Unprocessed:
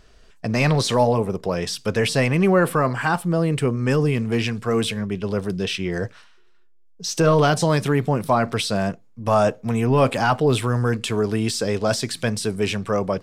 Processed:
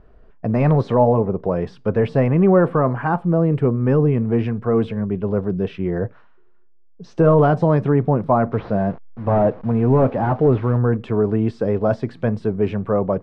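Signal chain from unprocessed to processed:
0:08.52–0:10.78: linear delta modulator 32 kbit/s, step −34 dBFS
low-pass filter 1,000 Hz 12 dB per octave
level +3.5 dB

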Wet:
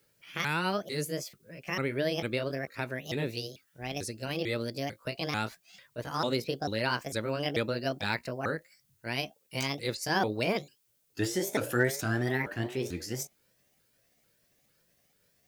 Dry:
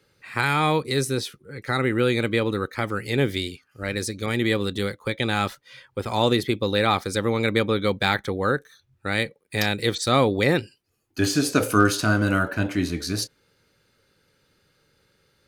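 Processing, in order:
pitch shifter swept by a sawtooth +6.5 semitones, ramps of 445 ms
background noise blue −65 dBFS
level −8 dB

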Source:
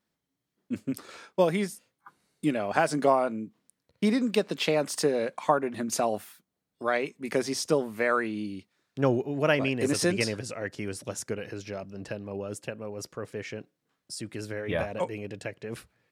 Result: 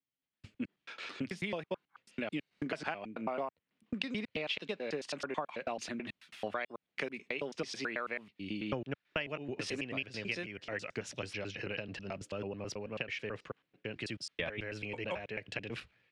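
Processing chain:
slices reordered back to front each 109 ms, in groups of 4
parametric band 2,700 Hz +12 dB 1.3 octaves
downward compressor 10 to 1, threshold −33 dBFS, peak gain reduction 19.5 dB
low-pass filter 5,000 Hz 12 dB per octave
multiband upward and downward expander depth 40%
level −1 dB

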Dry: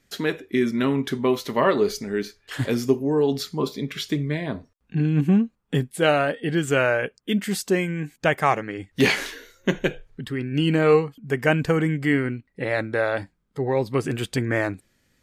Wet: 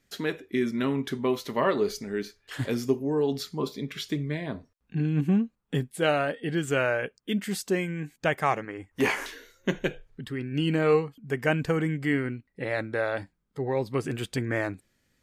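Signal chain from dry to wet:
0:08.65–0:09.26: graphic EQ with 15 bands 160 Hz −10 dB, 1,000 Hz +8 dB, 4,000 Hz −12 dB
level −5 dB

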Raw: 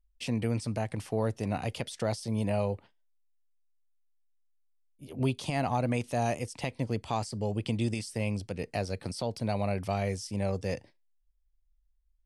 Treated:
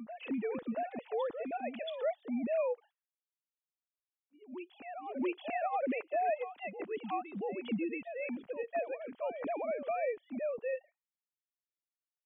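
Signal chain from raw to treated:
three sine waves on the formant tracks
backwards echo 679 ms −10 dB
level −5 dB

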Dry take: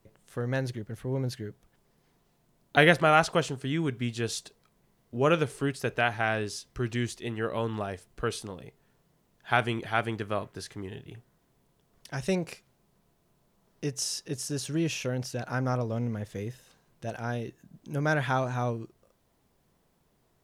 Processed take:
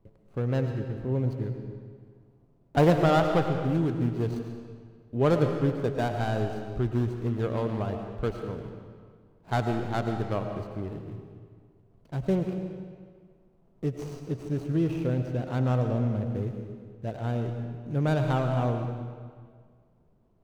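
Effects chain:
running median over 25 samples
spectral tilt −1.5 dB per octave
on a send: convolution reverb RT60 1.8 s, pre-delay 65 ms, DRR 5 dB

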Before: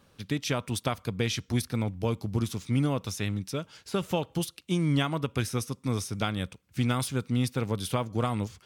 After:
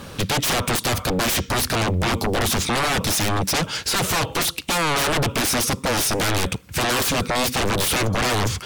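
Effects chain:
brickwall limiter −21 dBFS, peak gain reduction 8.5 dB
sine wavefolder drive 17 dB, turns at −21 dBFS
level +3.5 dB

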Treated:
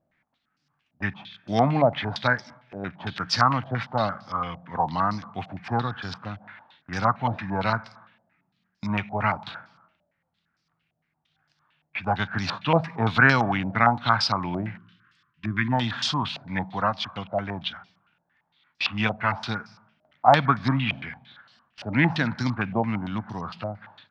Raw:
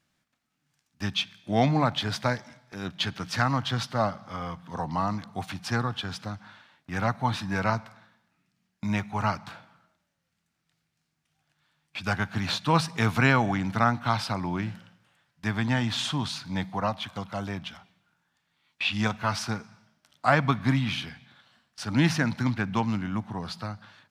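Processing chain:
gain on a spectral selection 0:14.77–0:15.73, 400–1,000 Hz −27 dB
low-pass on a step sequencer 8.8 Hz 640–5,000 Hz

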